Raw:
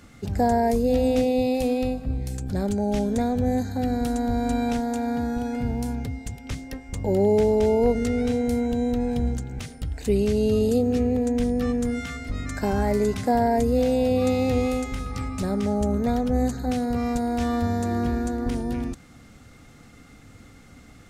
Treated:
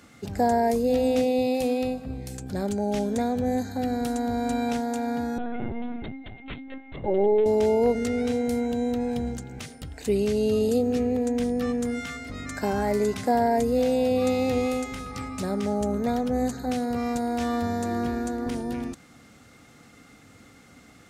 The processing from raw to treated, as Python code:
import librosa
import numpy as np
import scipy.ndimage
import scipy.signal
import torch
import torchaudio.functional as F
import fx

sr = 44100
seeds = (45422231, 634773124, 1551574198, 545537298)

y = fx.highpass(x, sr, hz=210.0, slope=6)
y = fx.lpc_vocoder(y, sr, seeds[0], excitation='pitch_kept', order=16, at=(5.38, 7.46))